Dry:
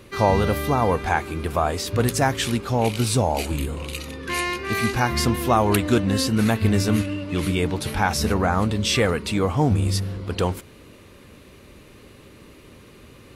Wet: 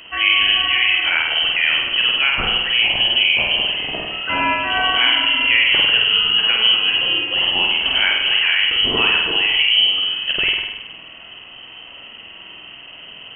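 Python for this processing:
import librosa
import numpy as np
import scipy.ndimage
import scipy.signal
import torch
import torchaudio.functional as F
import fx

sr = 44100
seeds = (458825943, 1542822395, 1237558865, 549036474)

p1 = fx.over_compress(x, sr, threshold_db=-25.0, ratio=-1.0)
p2 = x + F.gain(torch.from_numpy(p1), -1.5).numpy()
p3 = fx.room_flutter(p2, sr, wall_m=8.5, rt60_s=0.96)
p4 = fx.freq_invert(p3, sr, carrier_hz=3100)
y = F.gain(torch.from_numpy(p4), -1.5).numpy()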